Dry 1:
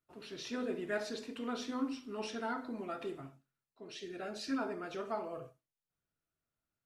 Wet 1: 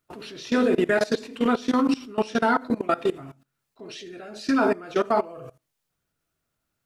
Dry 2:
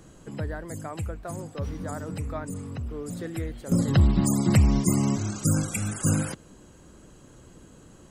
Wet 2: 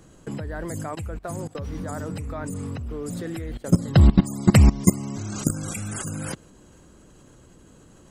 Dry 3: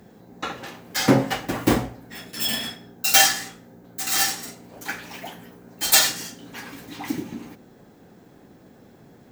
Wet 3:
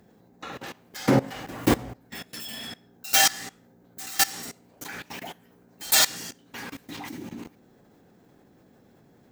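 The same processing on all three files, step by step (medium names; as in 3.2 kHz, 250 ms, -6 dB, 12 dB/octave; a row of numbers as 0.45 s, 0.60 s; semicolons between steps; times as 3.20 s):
level held to a coarse grid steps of 20 dB; normalise loudness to -24 LUFS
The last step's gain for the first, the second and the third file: +20.5 dB, +9.0 dB, +2.5 dB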